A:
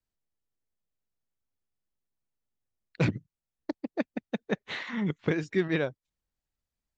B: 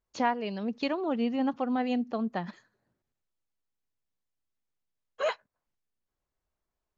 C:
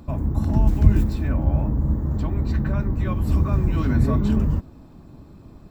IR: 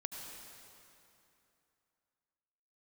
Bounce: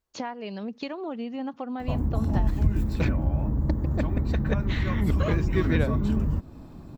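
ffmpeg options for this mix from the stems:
-filter_complex "[0:a]alimiter=limit=-16dB:level=0:latency=1:release=313,volume=0.5dB[a];[1:a]acompressor=threshold=-32dB:ratio=6,volume=2dB[b];[2:a]acompressor=threshold=-27dB:ratio=2,adelay=1800,volume=1.5dB[c];[a][b][c]amix=inputs=3:normalize=0"

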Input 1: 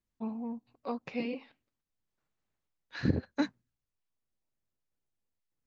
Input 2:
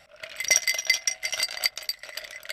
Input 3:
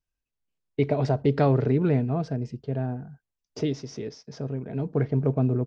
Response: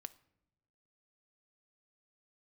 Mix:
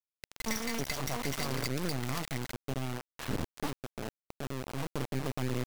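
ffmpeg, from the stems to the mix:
-filter_complex "[0:a]equalizer=f=1.4k:t=o:w=0.68:g=-8,acontrast=26,adelay=250,volume=-2.5dB,asplit=2[a][b];[b]volume=-9dB[c];[1:a]dynaudnorm=f=130:g=5:m=14.5dB,volume=-12.5dB,asplit=2[d][e];[e]volume=-8.5dB[f];[2:a]volume=-6.5dB,asplit=2[g][h];[h]volume=-11.5dB[i];[a][g]amix=inputs=2:normalize=0,highshelf=f=1.7k:t=q:w=1.5:g=-7,alimiter=limit=-24dB:level=0:latency=1:release=115,volume=0dB[j];[3:a]atrim=start_sample=2205[k];[c][f][i]amix=inputs=3:normalize=0[l];[l][k]afir=irnorm=-1:irlink=0[m];[d][j][m]amix=inputs=3:normalize=0,equalizer=f=1.1k:w=2:g=14.5,acrossover=split=260[n][o];[o]acompressor=threshold=-32dB:ratio=3[p];[n][p]amix=inputs=2:normalize=0,acrusher=bits=3:dc=4:mix=0:aa=0.000001"

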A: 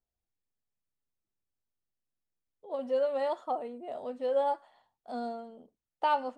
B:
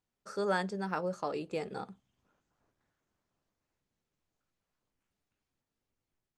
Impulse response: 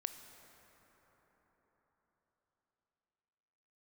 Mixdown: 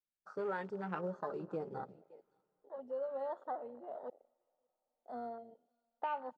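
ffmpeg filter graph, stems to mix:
-filter_complex "[0:a]lowshelf=f=210:g=-11.5,volume=-7dB,asplit=3[a][b][c];[a]atrim=end=4.1,asetpts=PTS-STARTPTS,afade=t=out:st=4.096:d=0.004:c=hsin[d];[b]atrim=start=4.1:end=4.98,asetpts=PTS-STARTPTS,volume=0[e];[c]atrim=start=4.98,asetpts=PTS-STARTPTS,afade=t=in:d=0.004:c=hsin[f];[d][e][f]concat=n=3:v=0:a=1,asplit=3[g][h][i];[h]volume=-9dB[j];[i]volume=-24dB[k];[1:a]acrusher=bits=5:mode=log:mix=0:aa=0.000001,lowpass=5.6k,flanger=delay=4.8:depth=2.8:regen=23:speed=0.82:shape=sinusoidal,volume=-1.5dB,asplit=4[l][m][n][o];[m]volume=-8.5dB[p];[n]volume=-18.5dB[q];[o]apad=whole_len=281031[r];[g][r]sidechaincompress=threshold=-55dB:ratio=8:attack=28:release=1230[s];[2:a]atrim=start_sample=2205[t];[j][p]amix=inputs=2:normalize=0[u];[u][t]afir=irnorm=-1:irlink=0[v];[k][q]amix=inputs=2:normalize=0,aecho=0:1:569:1[w];[s][l][v][w]amix=inputs=4:normalize=0,afwtdn=0.00447,acompressor=threshold=-36dB:ratio=2.5"

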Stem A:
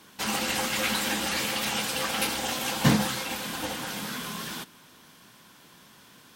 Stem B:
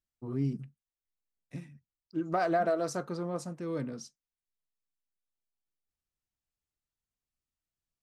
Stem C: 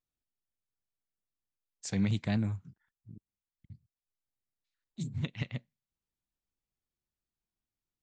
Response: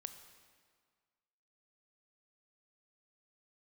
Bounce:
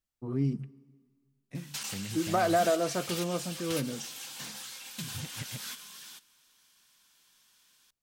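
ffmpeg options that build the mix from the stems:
-filter_complex "[0:a]tiltshelf=f=1.1k:g=-9,bandreject=f=2k:w=29,asoftclip=type=tanh:threshold=-18dB,adelay=1550,volume=-9dB[a];[1:a]volume=0dB,asplit=2[b][c];[c]volume=-6dB[d];[2:a]aeval=exprs='sgn(val(0))*max(abs(val(0))-0.00224,0)':c=same,volume=1dB,asplit=2[e][f];[f]apad=whole_len=348631[g];[a][g]sidechaingate=range=-10dB:threshold=-57dB:ratio=16:detection=peak[h];[h][e]amix=inputs=2:normalize=0,equalizer=f=6.7k:t=o:w=1.5:g=4,acompressor=threshold=-35dB:ratio=8,volume=0dB[i];[3:a]atrim=start_sample=2205[j];[d][j]afir=irnorm=-1:irlink=0[k];[b][i][k]amix=inputs=3:normalize=0"

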